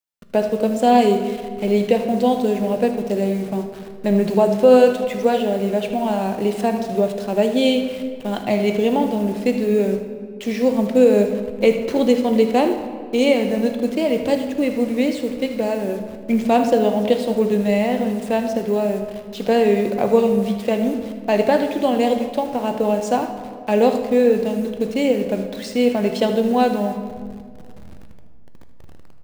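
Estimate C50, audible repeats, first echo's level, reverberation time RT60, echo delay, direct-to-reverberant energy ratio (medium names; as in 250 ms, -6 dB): 7.0 dB, 1, -13.5 dB, 2.0 s, 78 ms, 5.5 dB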